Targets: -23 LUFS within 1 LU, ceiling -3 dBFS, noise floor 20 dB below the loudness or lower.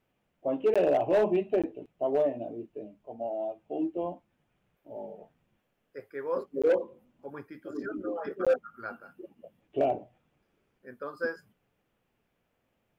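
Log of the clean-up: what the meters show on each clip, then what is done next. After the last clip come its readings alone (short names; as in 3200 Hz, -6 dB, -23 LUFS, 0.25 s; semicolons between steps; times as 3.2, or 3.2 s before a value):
clipped 0.4%; flat tops at -18.5 dBFS; dropouts 4; longest dropout 16 ms; loudness -30.5 LUFS; peak -18.5 dBFS; loudness target -23.0 LUFS
-> clip repair -18.5 dBFS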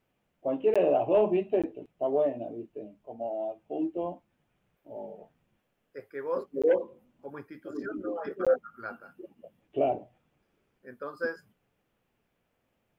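clipped 0.0%; dropouts 4; longest dropout 16 ms
-> interpolate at 0.74/1.62/6.62/8.45, 16 ms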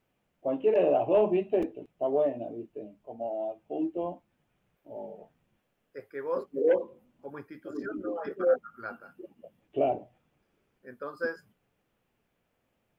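dropouts 0; loudness -30.0 LUFS; peak -13.0 dBFS; loudness target -23.0 LUFS
-> gain +7 dB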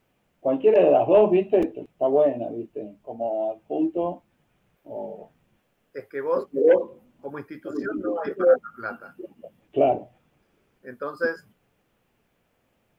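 loudness -23.0 LUFS; peak -6.0 dBFS; noise floor -70 dBFS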